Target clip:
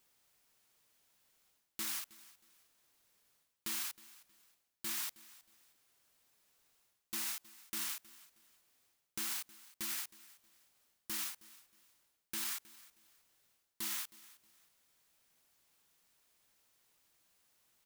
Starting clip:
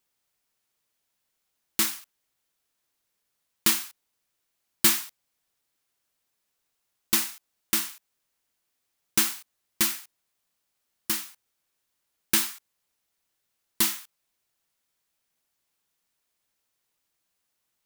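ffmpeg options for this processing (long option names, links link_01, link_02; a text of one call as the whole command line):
ffmpeg -i in.wav -af "areverse,acompressor=threshold=-35dB:ratio=6,areverse,alimiter=level_in=10dB:limit=-24dB:level=0:latency=1:release=25,volume=-10dB,aecho=1:1:316|632:0.1|0.028,volume=5dB" out.wav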